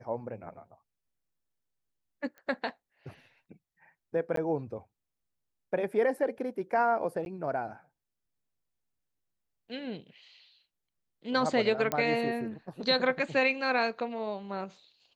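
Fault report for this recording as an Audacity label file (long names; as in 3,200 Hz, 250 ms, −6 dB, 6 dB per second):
2.380000	2.380000	click −35 dBFS
4.360000	4.370000	drop-out 13 ms
7.250000	7.260000	drop-out 11 ms
11.920000	11.920000	click −14 dBFS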